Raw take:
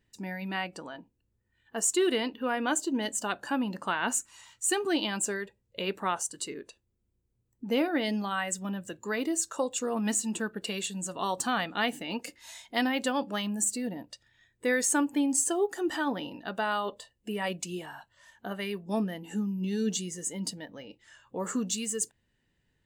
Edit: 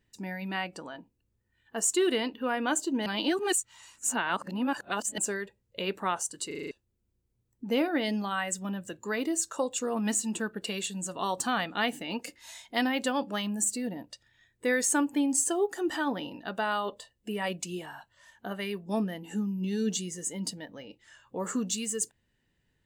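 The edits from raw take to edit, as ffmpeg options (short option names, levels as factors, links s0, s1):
-filter_complex "[0:a]asplit=9[s0][s1][s2][s3][s4][s5][s6][s7][s8];[s0]atrim=end=3.062[s9];[s1]atrim=start=3.058:end=5.182,asetpts=PTS-STARTPTS,areverse[s10];[s2]atrim=start=5.178:end=6.512[s11];[s3]atrim=start=6.468:end=6.512[s12];[s4]atrim=start=6.468:end=6.512[s13];[s5]atrim=start=6.468:end=6.512[s14];[s6]atrim=start=6.468:end=6.512[s15];[s7]atrim=start=6.468:end=6.512[s16];[s8]atrim=start=6.708[s17];[s9][s10]acrossfade=d=0.004:c1=hsin:c2=hsin[s18];[s18][s11]acrossfade=d=0.004:c1=hsin:c2=hsin[s19];[s19][s12]acrossfade=d=0.004:c1=hsin:c2=hsin[s20];[s20][s13]acrossfade=d=0.004:c1=hsin:c2=hsin[s21];[s21][s14]acrossfade=d=0.004:c1=hsin:c2=hsin[s22];[s22][s15]acrossfade=d=0.004:c1=hsin:c2=hsin[s23];[s23][s16]acrossfade=d=0.004:c1=hsin:c2=hsin[s24];[s24][s17]acrossfade=d=0.004:c1=hsin:c2=hsin"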